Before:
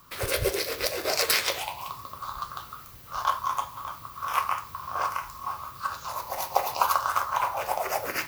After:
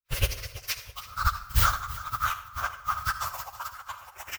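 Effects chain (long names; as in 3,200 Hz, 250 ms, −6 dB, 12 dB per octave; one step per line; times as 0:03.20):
loose part that buzzes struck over −31 dBFS, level −17 dBFS
camcorder AGC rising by 51 dB per second
low shelf with overshoot 110 Hz +8 dB, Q 1.5
formants moved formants +2 semitones
in parallel at +3 dB: brickwall limiter −15 dBFS, peak gain reduction 11 dB
on the sum: parametric band 350 Hz −12.5 dB 2.5 octaves
noise gate −16 dBFS, range −53 dB
repeating echo 618 ms, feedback 51%, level −17 dB
dense smooth reverb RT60 1.2 s, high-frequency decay 0.75×, pre-delay 95 ms, DRR 12 dB
time stretch by phase vocoder 0.53×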